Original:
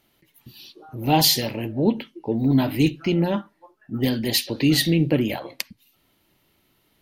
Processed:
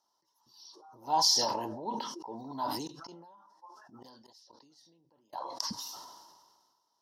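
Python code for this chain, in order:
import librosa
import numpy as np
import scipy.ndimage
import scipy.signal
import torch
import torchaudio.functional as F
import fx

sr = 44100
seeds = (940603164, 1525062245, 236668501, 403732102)

y = fx.gate_flip(x, sr, shuts_db=-17.0, range_db=-31, at=(2.87, 5.33))
y = fx.double_bandpass(y, sr, hz=2300.0, octaves=2.5)
y = fx.sustainer(y, sr, db_per_s=36.0)
y = y * 10.0 ** (2.0 / 20.0)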